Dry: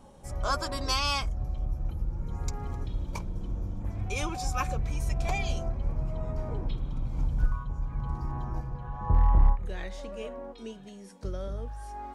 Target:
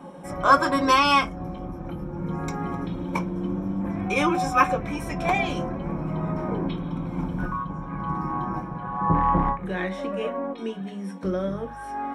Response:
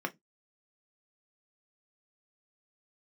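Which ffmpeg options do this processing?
-filter_complex "[1:a]atrim=start_sample=2205[s0];[0:a][s0]afir=irnorm=-1:irlink=0,volume=2.24"

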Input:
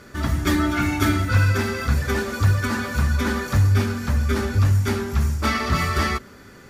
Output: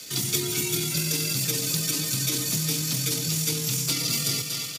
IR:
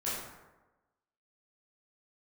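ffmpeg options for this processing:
-filter_complex "[0:a]asplit=2[s0][s1];[s1]aecho=0:1:337|674|1011|1348|1685|2022|2359:0.316|0.18|0.103|0.0586|0.0334|0.019|0.0108[s2];[s0][s2]amix=inputs=2:normalize=0,acrossover=split=220|450|1500|6200[s3][s4][s5][s6][s7];[s3]acompressor=threshold=0.0891:ratio=4[s8];[s4]acompressor=threshold=0.0562:ratio=4[s9];[s5]acompressor=threshold=0.0112:ratio=4[s10];[s6]acompressor=threshold=0.00891:ratio=4[s11];[s7]acompressor=threshold=0.00708:ratio=4[s12];[s8][s9][s10][s11][s12]amix=inputs=5:normalize=0,atempo=1.4,afreqshift=60,aexciter=amount=9.4:drive=7.9:freq=2500,volume=0.376"

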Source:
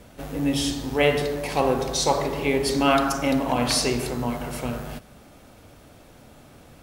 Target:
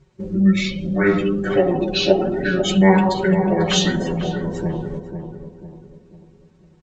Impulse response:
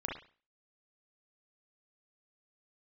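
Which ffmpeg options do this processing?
-filter_complex "[0:a]highpass=f=55:w=0.5412,highpass=f=55:w=1.3066,afftdn=nr=21:nf=-34,lowpass=f=11000:w=0.5412,lowpass=f=11000:w=1.3066,aecho=1:1:3.7:0.85,bandreject=f=387:t=h:w=4,bandreject=f=774:t=h:w=4,bandreject=f=1161:t=h:w=4,bandreject=f=1548:t=h:w=4,bandreject=f=1935:t=h:w=4,bandreject=f=2322:t=h:w=4,bandreject=f=2709:t=h:w=4,bandreject=f=3096:t=h:w=4,bandreject=f=3483:t=h:w=4,bandreject=f=3870:t=h:w=4,bandreject=f=4257:t=h:w=4,bandreject=f=4644:t=h:w=4,bandreject=f=5031:t=h:w=4,bandreject=f=5418:t=h:w=4,bandreject=f=5805:t=h:w=4,bandreject=f=6192:t=h:w=4,bandreject=f=6579:t=h:w=4,bandreject=f=6966:t=h:w=4,bandreject=f=7353:t=h:w=4,bandreject=f=7740:t=h:w=4,bandreject=f=8127:t=h:w=4,bandreject=f=8514:t=h:w=4,bandreject=f=8901:t=h:w=4,bandreject=f=9288:t=h:w=4,bandreject=f=9675:t=h:w=4,bandreject=f=10062:t=h:w=4,bandreject=f=10449:t=h:w=4,bandreject=f=10836:t=h:w=4,bandreject=f=11223:t=h:w=4,bandreject=f=11610:t=h:w=4,bandreject=f=11997:t=h:w=4,bandreject=f=12384:t=h:w=4,bandreject=f=12771:t=h:w=4,bandreject=f=13158:t=h:w=4,bandreject=f=13545:t=h:w=4,asplit=2[s0][s1];[s1]acompressor=threshold=0.0355:ratio=6,volume=1.33[s2];[s0][s2]amix=inputs=2:normalize=0,asetrate=30296,aresample=44100,atempo=1.45565,flanger=delay=7.2:depth=3.2:regen=21:speed=1.2:shape=sinusoidal,asplit=2[s3][s4];[s4]adelay=495,lowpass=f=1100:p=1,volume=0.447,asplit=2[s5][s6];[s6]adelay=495,lowpass=f=1100:p=1,volume=0.43,asplit=2[s7][s8];[s8]adelay=495,lowpass=f=1100:p=1,volume=0.43,asplit=2[s9][s10];[s10]adelay=495,lowpass=f=1100:p=1,volume=0.43,asplit=2[s11][s12];[s12]adelay=495,lowpass=f=1100:p=1,volume=0.43[s13];[s3][s5][s7][s9][s11][s13]amix=inputs=6:normalize=0,volume=1.41"

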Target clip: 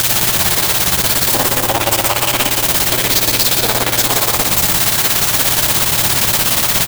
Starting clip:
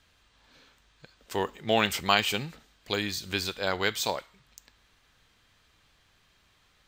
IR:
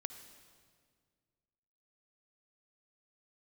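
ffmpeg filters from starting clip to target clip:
-filter_complex "[0:a]aeval=exprs='val(0)+0.5*0.0944*sgn(val(0))':c=same,aecho=1:1:140|238|306.6|354.6|388.2:0.631|0.398|0.251|0.158|0.1,asettb=1/sr,asplit=3[s0][s1][s2];[s0]atrim=end=1.544[s3];[s1]atrim=start=1.54:end=4.18,asetpts=PTS-STARTPTS,afade=t=in:d=0.004:c=qsin,afade=t=out:st=2.636:d=0.004:c=qsin,acrossover=split=340|3000[s4][s5][s6];[s4]acompressor=threshold=0.0447:ratio=6[s7];[s7][s5][s6]amix=inputs=3:normalize=0[s8];[s2]atrim=start=4.176[s9];[s3][s8]acrossfade=d=0.004:c1=hsin:c2=qsin[s10];[s10][s9]acrossfade=d=0.004:c1=qsin:c2=hsin,tremolo=f=17:d=0.83,acompressor=threshold=0.0355:ratio=10,aemphasis=mode=production:type=50kf[s11];[1:a]atrim=start_sample=2205[s12];[s11][s12]afir=irnorm=-1:irlink=0,acrusher=bits=6:dc=4:mix=0:aa=0.000001,equalizer=f=750:w=2.5:g=8,alimiter=level_in=15.8:limit=0.891:release=50:level=0:latency=1,aeval=exprs='val(0)*sgn(sin(2*PI*120*n/s))':c=same,volume=0.841"

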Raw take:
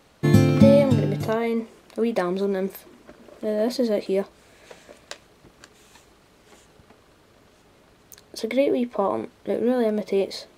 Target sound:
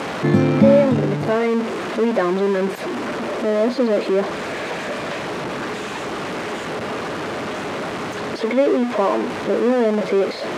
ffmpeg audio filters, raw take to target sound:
-filter_complex "[0:a]aeval=exprs='val(0)+0.5*0.106*sgn(val(0))':c=same,highpass=170,lowpass=7300,acrossover=split=2600[s0][s1];[s1]acompressor=threshold=0.00794:ratio=4:attack=1:release=60[s2];[s0][s2]amix=inputs=2:normalize=0,volume=1.19"

